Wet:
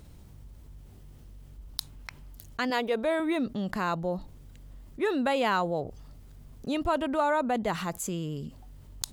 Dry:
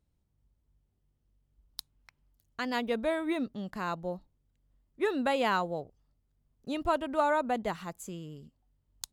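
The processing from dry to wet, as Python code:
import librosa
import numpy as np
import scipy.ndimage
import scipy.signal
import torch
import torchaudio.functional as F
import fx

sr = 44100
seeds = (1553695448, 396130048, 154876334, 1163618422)

y = fx.low_shelf_res(x, sr, hz=280.0, db=-7.0, q=1.5, at=(2.7, 3.2))
y = fx.env_flatten(y, sr, amount_pct=50)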